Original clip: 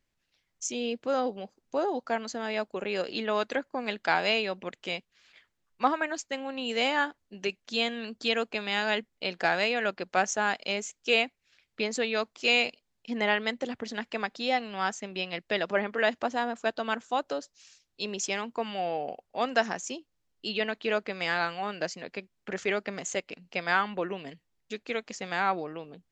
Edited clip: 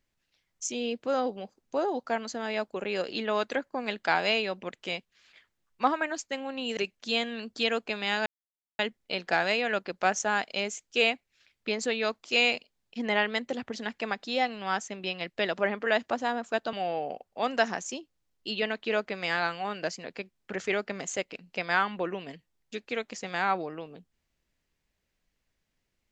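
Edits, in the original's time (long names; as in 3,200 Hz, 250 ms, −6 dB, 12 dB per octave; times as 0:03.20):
0:06.77–0:07.42: remove
0:08.91: splice in silence 0.53 s
0:16.85–0:18.71: remove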